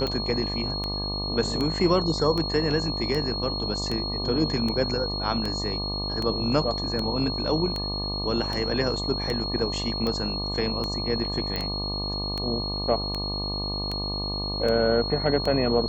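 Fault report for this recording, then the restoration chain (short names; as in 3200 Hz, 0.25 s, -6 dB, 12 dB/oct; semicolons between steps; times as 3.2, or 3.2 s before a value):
buzz 50 Hz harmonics 24 -32 dBFS
tick 78 rpm -16 dBFS
tone 4300 Hz -30 dBFS
11.56 pop -15 dBFS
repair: de-click; de-hum 50 Hz, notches 24; notch 4300 Hz, Q 30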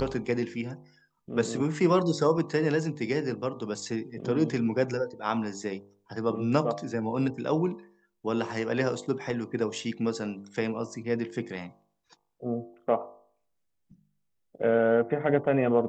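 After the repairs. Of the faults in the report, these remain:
none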